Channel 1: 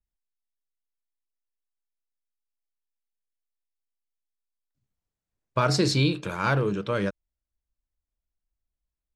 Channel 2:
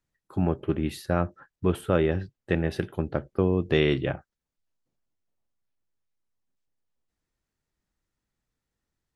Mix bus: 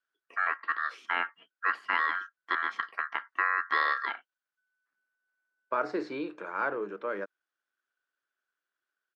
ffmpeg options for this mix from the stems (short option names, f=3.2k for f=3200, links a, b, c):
-filter_complex "[0:a]highshelf=f=2.4k:t=q:w=1.5:g=-11.5,adelay=150,volume=-6.5dB[a];[1:a]bandreject=f=570:w=12,aeval=exprs='val(0)*sin(2*PI*1500*n/s)':c=same,volume=-2dB[b];[a][b]amix=inputs=2:normalize=0,highpass=f=300:w=0.5412,highpass=f=300:w=1.3066,acrossover=split=4100[c][d];[d]acompressor=threshold=-57dB:ratio=4:attack=1:release=60[e];[c][e]amix=inputs=2:normalize=0,lowpass=5.5k"